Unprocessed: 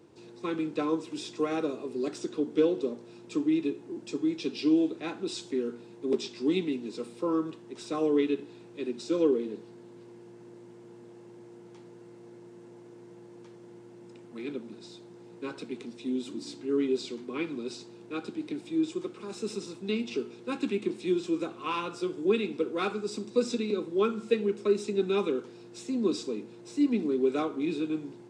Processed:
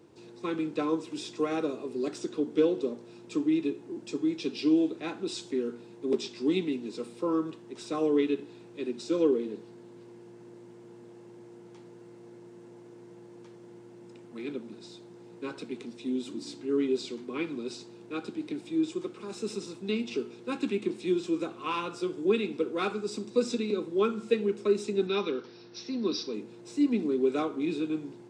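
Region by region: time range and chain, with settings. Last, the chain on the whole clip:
0:25.07–0:26.34: Chebyshev low-pass with heavy ripple 5,800 Hz, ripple 3 dB + high-shelf EQ 3,400 Hz +11 dB
whole clip: no processing

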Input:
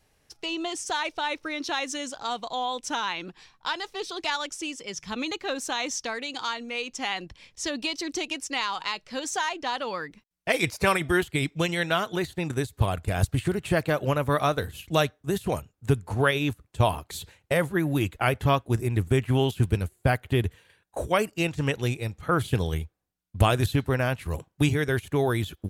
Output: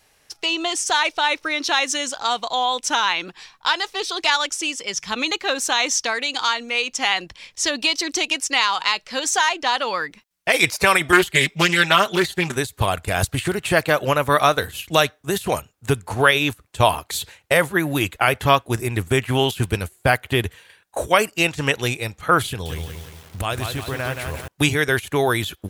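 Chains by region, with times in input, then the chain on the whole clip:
0:11.12–0:12.56: comb filter 5.1 ms, depth 85% + highs frequency-modulated by the lows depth 0.24 ms
0:22.48–0:24.48: low-shelf EQ 96 Hz +10 dB + downward compressor 2.5 to 1, threshold −30 dBFS + feedback echo at a low word length 175 ms, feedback 55%, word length 8 bits, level −5.5 dB
whole clip: low-shelf EQ 460 Hz −11.5 dB; boost into a limiter +12 dB; level −1 dB

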